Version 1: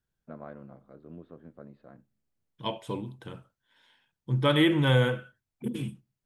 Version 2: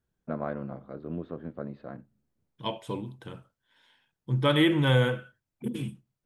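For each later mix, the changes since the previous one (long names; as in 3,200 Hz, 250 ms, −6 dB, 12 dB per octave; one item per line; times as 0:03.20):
first voice +10.5 dB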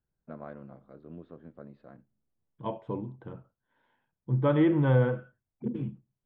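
first voice −10.0 dB
second voice: add low-pass filter 1,100 Hz 12 dB per octave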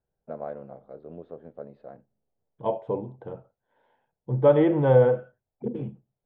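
master: add flat-topped bell 590 Hz +10 dB 1.3 octaves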